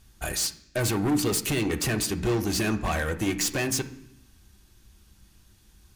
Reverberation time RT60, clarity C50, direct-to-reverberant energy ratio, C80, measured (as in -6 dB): 0.70 s, 13.5 dB, 5.0 dB, 17.0 dB